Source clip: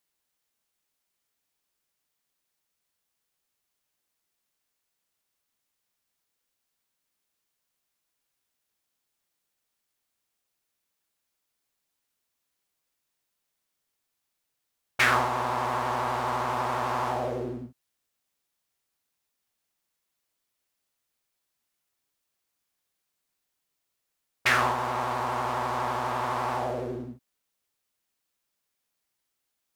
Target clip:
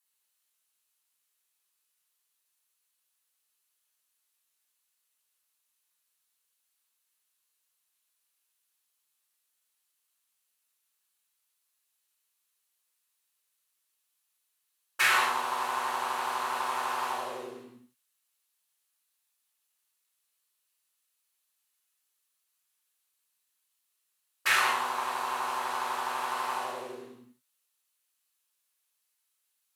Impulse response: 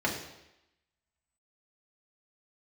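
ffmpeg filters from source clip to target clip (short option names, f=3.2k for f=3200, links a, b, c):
-filter_complex "[0:a]aderivative[a];[1:a]atrim=start_sample=2205,atrim=end_sample=6174,asetrate=26019,aresample=44100[b];[a][b]afir=irnorm=-1:irlink=0"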